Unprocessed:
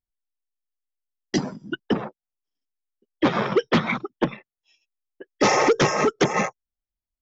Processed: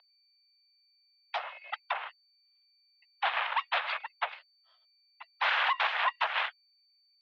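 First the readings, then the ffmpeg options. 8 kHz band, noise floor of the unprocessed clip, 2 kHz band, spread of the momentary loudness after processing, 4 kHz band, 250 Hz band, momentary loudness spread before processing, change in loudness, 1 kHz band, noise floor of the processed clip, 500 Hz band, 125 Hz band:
n/a, under -85 dBFS, -3.0 dB, 12 LU, -3.5 dB, under -40 dB, 10 LU, -8.5 dB, -5.5 dB, -69 dBFS, -21.0 dB, under -40 dB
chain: -af "aeval=exprs='val(0)+0.00708*sin(2*PI*2200*n/s)':c=same,aeval=exprs='abs(val(0))':c=same,highpass=f=580:t=q:w=0.5412,highpass=f=580:t=q:w=1.307,lowpass=f=3.4k:t=q:w=0.5176,lowpass=f=3.4k:t=q:w=0.7071,lowpass=f=3.4k:t=q:w=1.932,afreqshift=160,volume=-1.5dB"

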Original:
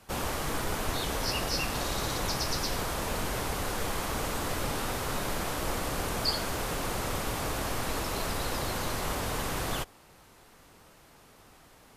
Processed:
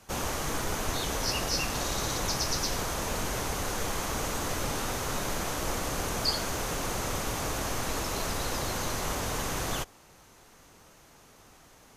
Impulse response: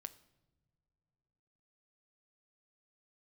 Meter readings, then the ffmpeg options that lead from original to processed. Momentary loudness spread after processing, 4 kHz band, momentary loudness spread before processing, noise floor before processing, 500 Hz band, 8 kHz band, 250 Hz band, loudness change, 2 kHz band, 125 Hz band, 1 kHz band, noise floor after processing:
3 LU, +1.0 dB, 3 LU, -57 dBFS, 0.0 dB, +3.5 dB, 0.0 dB, +1.0 dB, 0.0 dB, 0.0 dB, 0.0 dB, -56 dBFS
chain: -af "equalizer=f=6.3k:w=4.1:g=7.5"

